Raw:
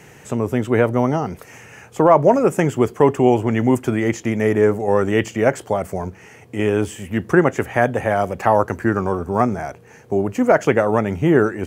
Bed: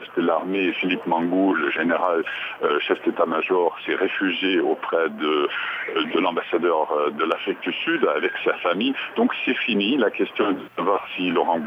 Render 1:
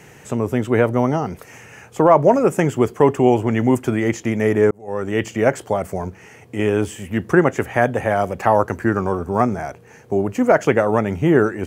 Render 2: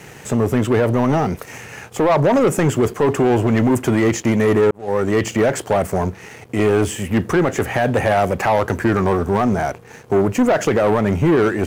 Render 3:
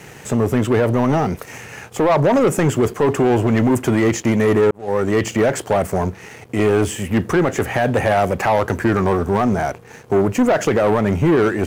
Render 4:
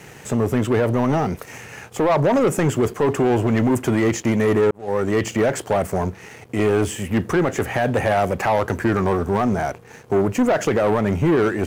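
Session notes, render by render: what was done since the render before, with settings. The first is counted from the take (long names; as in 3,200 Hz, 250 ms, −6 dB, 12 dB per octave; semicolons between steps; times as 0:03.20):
0:04.71–0:05.34: fade in
brickwall limiter −9 dBFS, peak gain reduction 7 dB; leveller curve on the samples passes 2
no processing that can be heard
level −2.5 dB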